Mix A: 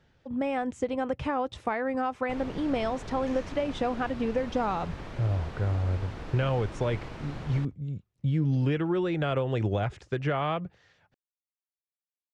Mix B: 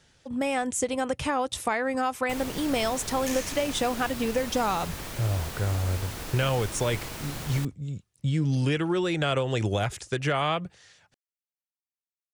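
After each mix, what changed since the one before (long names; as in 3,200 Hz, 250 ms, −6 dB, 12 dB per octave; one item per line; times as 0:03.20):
second sound +5.0 dB
master: remove head-to-tape spacing loss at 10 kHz 29 dB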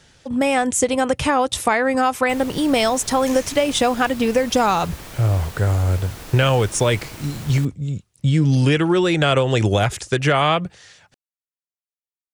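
speech +9.0 dB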